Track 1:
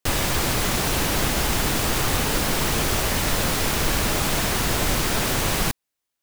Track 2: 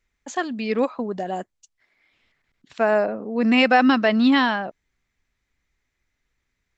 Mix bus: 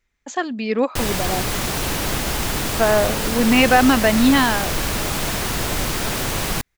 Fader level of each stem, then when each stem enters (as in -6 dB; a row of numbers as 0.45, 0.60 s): -0.5, +2.0 dB; 0.90, 0.00 s